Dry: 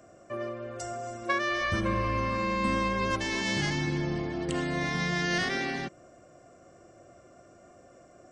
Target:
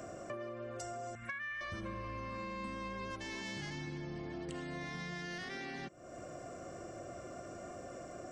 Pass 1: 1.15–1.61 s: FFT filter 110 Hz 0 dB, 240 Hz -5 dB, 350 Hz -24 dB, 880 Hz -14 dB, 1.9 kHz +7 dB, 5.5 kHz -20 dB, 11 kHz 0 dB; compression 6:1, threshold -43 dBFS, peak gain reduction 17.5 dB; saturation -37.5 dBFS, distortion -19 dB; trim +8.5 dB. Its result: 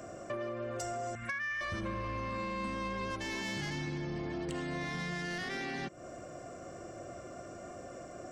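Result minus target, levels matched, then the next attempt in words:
compression: peak gain reduction -6 dB
1.15–1.61 s: FFT filter 110 Hz 0 dB, 240 Hz -5 dB, 350 Hz -24 dB, 880 Hz -14 dB, 1.9 kHz +7 dB, 5.5 kHz -20 dB, 11 kHz 0 dB; compression 6:1, threshold -50.5 dBFS, peak gain reduction 24 dB; saturation -37.5 dBFS, distortion -29 dB; trim +8.5 dB

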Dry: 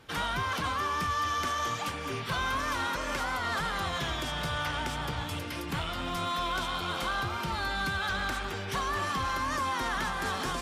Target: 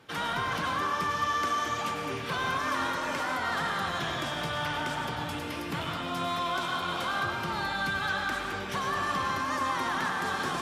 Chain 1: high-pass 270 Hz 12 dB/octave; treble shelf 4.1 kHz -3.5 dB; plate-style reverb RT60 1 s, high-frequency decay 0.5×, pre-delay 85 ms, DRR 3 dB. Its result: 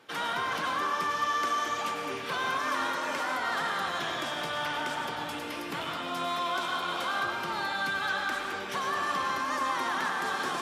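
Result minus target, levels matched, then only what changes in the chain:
125 Hz band -9.5 dB
change: high-pass 120 Hz 12 dB/octave

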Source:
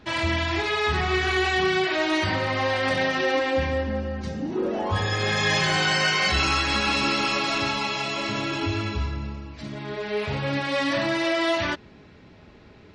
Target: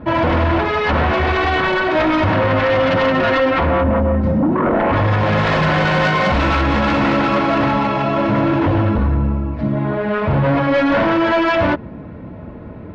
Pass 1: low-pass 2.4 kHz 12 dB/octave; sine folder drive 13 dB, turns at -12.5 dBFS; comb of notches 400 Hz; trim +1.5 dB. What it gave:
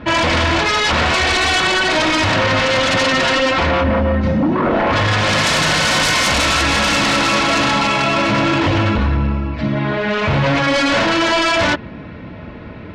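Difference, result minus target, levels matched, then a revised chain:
2 kHz band +3.0 dB
low-pass 990 Hz 12 dB/octave; sine folder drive 13 dB, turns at -12.5 dBFS; comb of notches 400 Hz; trim +1.5 dB

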